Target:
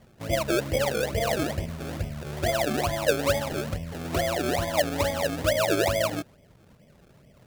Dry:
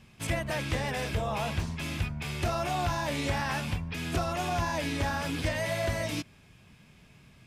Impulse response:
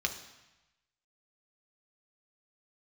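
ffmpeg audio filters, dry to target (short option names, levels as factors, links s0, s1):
-af "lowpass=f=580:t=q:w=4.9,acrusher=samples=31:mix=1:aa=0.000001:lfo=1:lforange=31:lforate=2.3"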